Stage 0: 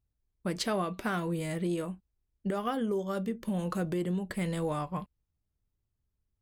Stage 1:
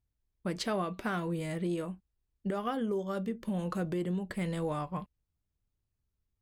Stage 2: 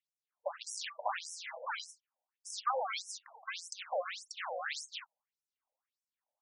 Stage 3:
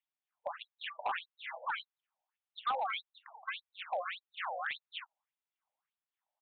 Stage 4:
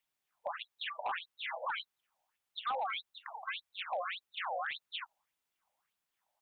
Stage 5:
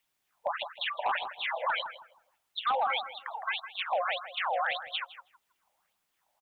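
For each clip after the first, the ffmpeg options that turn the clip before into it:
-af "highshelf=f=7200:g=-6,volume=0.841"
-af "acrusher=samples=28:mix=1:aa=0.000001:lfo=1:lforange=44.8:lforate=1.8,afftfilt=real='re*between(b*sr/1024,660*pow(7600/660,0.5+0.5*sin(2*PI*1.7*pts/sr))/1.41,660*pow(7600/660,0.5+0.5*sin(2*PI*1.7*pts/sr))*1.41)':imag='im*between(b*sr/1024,660*pow(7600/660,0.5+0.5*sin(2*PI*1.7*pts/sr))/1.41,660*pow(7600/660,0.5+0.5*sin(2*PI*1.7*pts/sr))*1.41)':win_size=1024:overlap=0.75,volume=2.11"
-af "lowshelf=f=570:t=q:w=1.5:g=-9.5,aresample=8000,volume=29.9,asoftclip=hard,volume=0.0335,aresample=44100,volume=1.12"
-af "alimiter=level_in=4.73:limit=0.0631:level=0:latency=1:release=98,volume=0.211,volume=2.51"
-filter_complex "[0:a]asplit=2[s0][s1];[s1]adelay=160,lowpass=f=960:p=1,volume=0.473,asplit=2[s2][s3];[s3]adelay=160,lowpass=f=960:p=1,volume=0.34,asplit=2[s4][s5];[s5]adelay=160,lowpass=f=960:p=1,volume=0.34,asplit=2[s6][s7];[s7]adelay=160,lowpass=f=960:p=1,volume=0.34[s8];[s0][s2][s4][s6][s8]amix=inputs=5:normalize=0,volume=2.24"

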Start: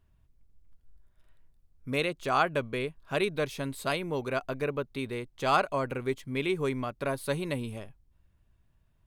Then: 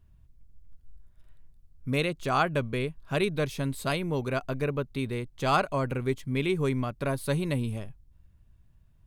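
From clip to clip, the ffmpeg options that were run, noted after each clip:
-af "bass=f=250:g=8,treble=f=4000:g=2"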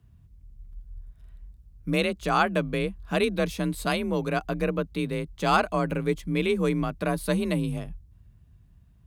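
-af "afreqshift=36,volume=1.33"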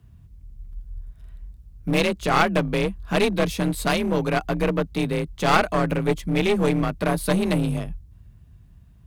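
-af "aeval=exprs='clip(val(0),-1,0.0422)':c=same,volume=2"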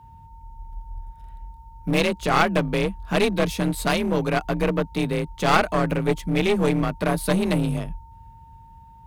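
-af "aeval=exprs='val(0)+0.00447*sin(2*PI*910*n/s)':c=same"

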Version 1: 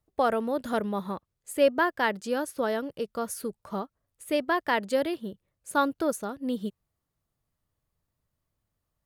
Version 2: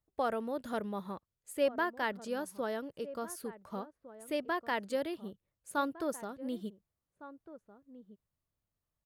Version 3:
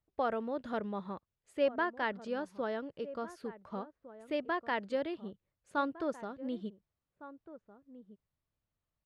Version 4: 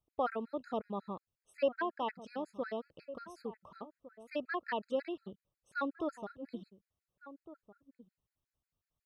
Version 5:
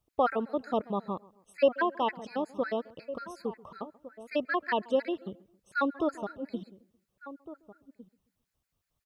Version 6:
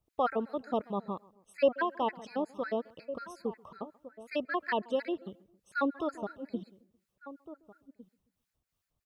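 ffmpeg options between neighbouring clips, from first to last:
-filter_complex "[0:a]asplit=2[s0][s1];[s1]adelay=1458,volume=0.178,highshelf=f=4000:g=-32.8[s2];[s0][s2]amix=inputs=2:normalize=0,volume=0.398"
-af "lowpass=3800"
-af "afftfilt=real='re*gt(sin(2*PI*5.5*pts/sr)*(1-2*mod(floor(b*sr/1024/1300),2)),0)':imag='im*gt(sin(2*PI*5.5*pts/sr)*(1-2*mod(floor(b*sr/1024/1300),2)),0)':win_size=1024:overlap=0.75"
-filter_complex "[0:a]asplit=2[s0][s1];[s1]adelay=134,lowpass=f=1600:p=1,volume=0.0841,asplit=2[s2][s3];[s3]adelay=134,lowpass=f=1600:p=1,volume=0.45,asplit=2[s4][s5];[s5]adelay=134,lowpass=f=1600:p=1,volume=0.45[s6];[s0][s2][s4][s6]amix=inputs=4:normalize=0,volume=2.37"
-filter_complex "[0:a]acrossover=split=940[s0][s1];[s0]aeval=exprs='val(0)*(1-0.5/2+0.5/2*cos(2*PI*2.9*n/s))':c=same[s2];[s1]aeval=exprs='val(0)*(1-0.5/2-0.5/2*cos(2*PI*2.9*n/s))':c=same[s3];[s2][s3]amix=inputs=2:normalize=0"

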